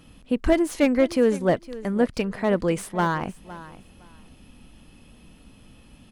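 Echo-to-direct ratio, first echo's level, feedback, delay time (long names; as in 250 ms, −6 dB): −17.0 dB, −17.0 dB, 19%, 512 ms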